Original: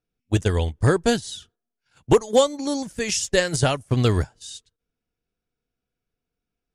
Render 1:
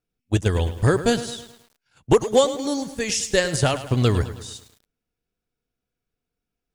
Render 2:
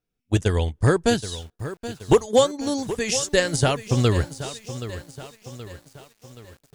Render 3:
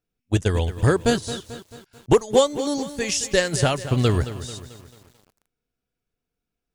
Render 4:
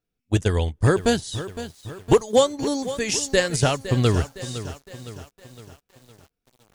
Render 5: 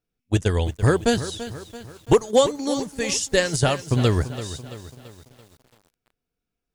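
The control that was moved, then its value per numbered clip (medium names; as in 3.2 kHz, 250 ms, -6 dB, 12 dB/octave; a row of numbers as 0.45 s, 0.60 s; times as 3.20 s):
bit-crushed delay, time: 106 ms, 775 ms, 220 ms, 511 ms, 336 ms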